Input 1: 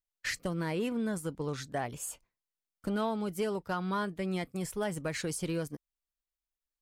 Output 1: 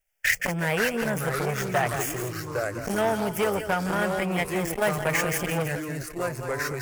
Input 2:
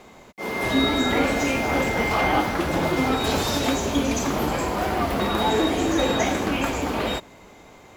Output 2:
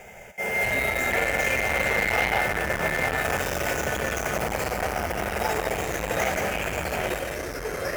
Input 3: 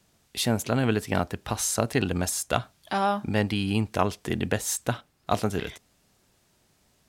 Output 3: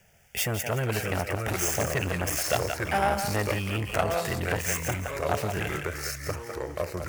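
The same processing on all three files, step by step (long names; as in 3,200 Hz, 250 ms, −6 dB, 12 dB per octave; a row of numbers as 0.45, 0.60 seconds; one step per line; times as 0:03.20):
running median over 5 samples
high-shelf EQ 2,400 Hz +8.5 dB
in parallel at +0.5 dB: downward compressor, threshold −30 dBFS
on the sum: phaser with its sweep stopped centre 1,100 Hz, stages 6
on a send: feedback echo with a high-pass in the loop 170 ms, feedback 30%, high-pass 710 Hz, level −7 dB
on the sum: delay with pitch and tempo change per echo 480 ms, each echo −3 semitones, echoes 3, each echo −6 dB
saturating transformer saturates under 1,300 Hz
normalise the peak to −9 dBFS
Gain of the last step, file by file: +7.5, −1.5, +0.5 decibels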